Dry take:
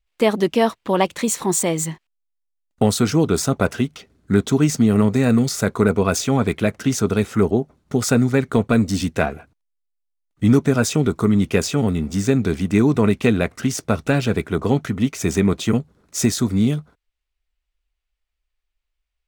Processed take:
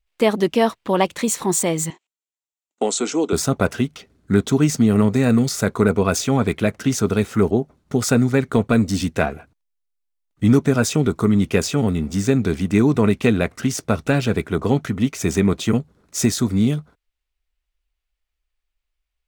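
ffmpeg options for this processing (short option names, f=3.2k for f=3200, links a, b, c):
-filter_complex "[0:a]asettb=1/sr,asplit=3[a][b][c];[a]atrim=end=1.904[d];[b]atrim=start=1.9:end=3.33,asetpts=PTS-STARTPTS,afade=t=in:d=0.004:c=qsin,afade=t=out:st=1.426:d=0.004:c=qsin,highpass=f=290:w=0.5412,highpass=f=290:w=1.3066,equalizer=f=580:t=q:w=4:g=-3,equalizer=f=1.2k:t=q:w=4:g=-4,equalizer=f=1.7k:t=q:w=4:g=-8,equalizer=f=4.8k:t=q:w=4:g=-6,equalizer=f=7.4k:t=q:w=4:g=10,lowpass=f=7.9k:w=0.5412,lowpass=f=7.9k:w=1.3066[e];[c]atrim=start=3.326[f];[d][e]acrossfade=d=0.004:c1=hsin:c2=qsin[g];[g][f]acrossfade=d=0.004:c1=qsin:c2=hsin,asettb=1/sr,asplit=3[h][i][j];[h]atrim=end=7.024[k];[i]atrim=start=7.02:end=7.49,asetpts=PTS-STARTPTS,afade=t=in:d=0.004:c=qsin,afade=t=out:st=0.466:d=0.004:c=qsin,aeval=exprs='val(0)*gte(abs(val(0)),0.00631)':c=same[l];[j]atrim=start=7.486[m];[k][l]acrossfade=d=0.004:c1=hsin:c2=qsin[n];[n][m]acrossfade=d=0.004:c1=qsin:c2=hsin"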